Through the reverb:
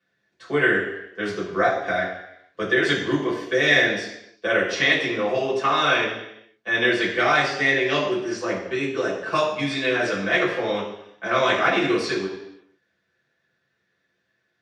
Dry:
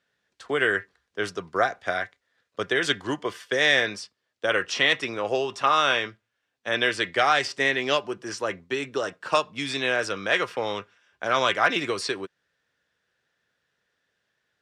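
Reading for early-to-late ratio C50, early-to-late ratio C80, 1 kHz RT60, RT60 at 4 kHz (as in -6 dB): 5.0 dB, 7.5 dB, 0.80 s, 0.85 s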